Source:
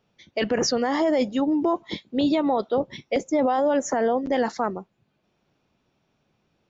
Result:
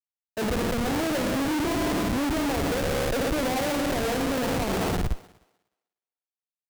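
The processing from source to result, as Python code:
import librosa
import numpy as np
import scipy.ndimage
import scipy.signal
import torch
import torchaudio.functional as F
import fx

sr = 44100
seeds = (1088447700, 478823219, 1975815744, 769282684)

p1 = scipy.signal.sosfilt(scipy.signal.cheby2(4, 50, 4500.0, 'lowpass', fs=sr, output='sos'), x)
p2 = fx.low_shelf(p1, sr, hz=95.0, db=-10.0)
p3 = fx.rev_spring(p2, sr, rt60_s=1.5, pass_ms=(55,), chirp_ms=35, drr_db=4.5)
p4 = fx.over_compress(p3, sr, threshold_db=-33.0, ratio=-1.0)
p5 = p3 + (p4 * librosa.db_to_amplitude(3.0))
p6 = fx.schmitt(p5, sr, flips_db=-22.0)
p7 = p6 + fx.echo_thinned(p6, sr, ms=305, feedback_pct=35, hz=320.0, wet_db=-16.5, dry=0)
p8 = fx.band_widen(p7, sr, depth_pct=70)
y = p8 * librosa.db_to_amplitude(-4.0)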